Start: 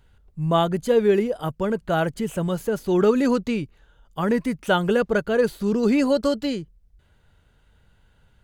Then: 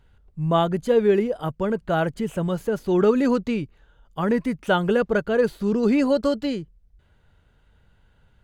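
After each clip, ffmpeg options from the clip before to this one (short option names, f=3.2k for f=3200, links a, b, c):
-af "highshelf=f=4.9k:g=-7.5"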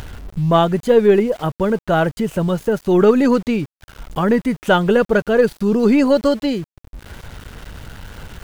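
-af "acompressor=mode=upward:threshold=-23dB:ratio=2.5,aeval=exprs='val(0)*gte(abs(val(0)),0.00891)':c=same,aeval=exprs='0.447*(cos(1*acos(clip(val(0)/0.447,-1,1)))-cos(1*PI/2))+0.01*(cos(6*acos(clip(val(0)/0.447,-1,1)))-cos(6*PI/2))':c=same,volume=6dB"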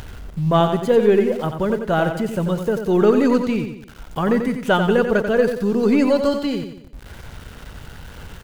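-af "aecho=1:1:90|180|270|360|450:0.422|0.177|0.0744|0.0312|0.0131,volume=-3dB"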